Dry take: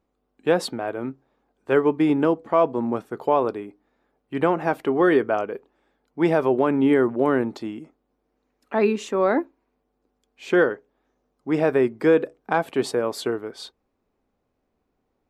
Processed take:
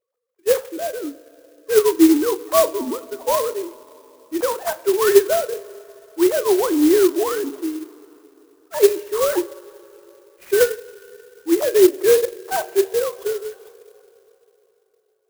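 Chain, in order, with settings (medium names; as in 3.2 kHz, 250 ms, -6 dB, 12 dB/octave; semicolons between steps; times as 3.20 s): formants replaced by sine waves; in parallel at -3.5 dB: sample-and-hold 10×; on the sum: two-slope reverb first 0.29 s, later 3.5 s, from -18 dB, DRR 9 dB; sampling jitter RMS 0.07 ms; trim -1.5 dB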